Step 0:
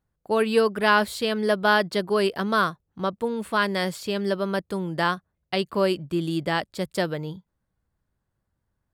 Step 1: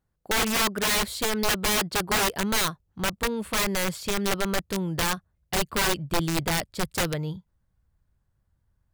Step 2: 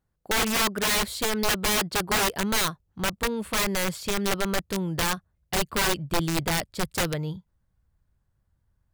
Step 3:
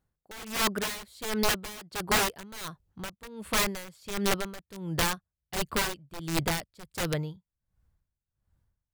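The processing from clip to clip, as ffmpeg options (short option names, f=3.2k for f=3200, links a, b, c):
-af "aeval=exprs='(mod(8.41*val(0)+1,2)-1)/8.41':c=same,asubboost=boost=2.5:cutoff=150"
-af anull
-af "aeval=exprs='val(0)*pow(10,-20*(0.5-0.5*cos(2*PI*1.4*n/s))/20)':c=same"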